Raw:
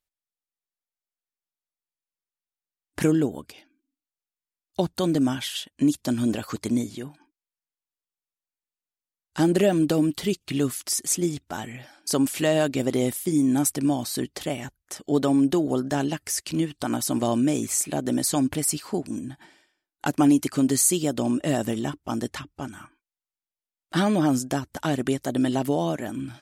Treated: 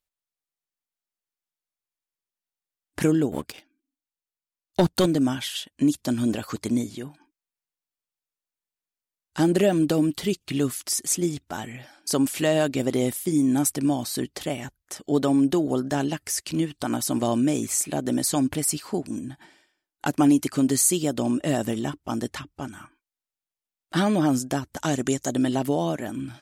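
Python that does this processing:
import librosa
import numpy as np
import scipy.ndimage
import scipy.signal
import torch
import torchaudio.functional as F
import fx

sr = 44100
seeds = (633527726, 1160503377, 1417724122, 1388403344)

y = fx.leveller(x, sr, passes=2, at=(3.32, 5.06))
y = fx.peak_eq(y, sr, hz=6700.0, db=13.0, octaves=0.48, at=(24.77, 25.37))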